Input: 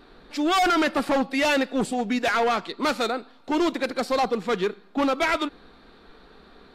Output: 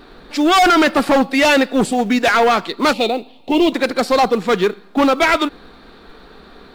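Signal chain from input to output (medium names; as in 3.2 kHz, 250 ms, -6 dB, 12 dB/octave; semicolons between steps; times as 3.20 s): 2.93–3.72 s: FFT filter 830 Hz 0 dB, 1.5 kHz -22 dB, 2.7 kHz +6 dB, 6 kHz -9 dB; in parallel at -10 dB: short-mantissa float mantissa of 2-bit; on the sum: trim +6.5 dB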